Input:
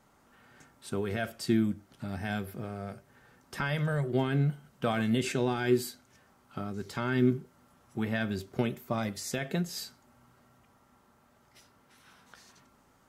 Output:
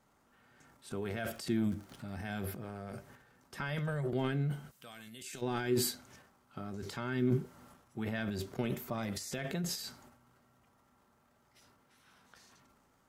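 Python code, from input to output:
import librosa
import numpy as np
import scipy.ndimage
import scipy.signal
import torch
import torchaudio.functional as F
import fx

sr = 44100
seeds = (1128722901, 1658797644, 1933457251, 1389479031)

y = fx.dmg_crackle(x, sr, seeds[0], per_s=65.0, level_db=-46.0, at=(1.11, 2.22), fade=0.02)
y = fx.pre_emphasis(y, sr, coefficient=0.9, at=(4.7, 5.41), fade=0.02)
y = fx.transient(y, sr, attack_db=0, sustain_db=12)
y = y * 10.0 ** (-6.5 / 20.0)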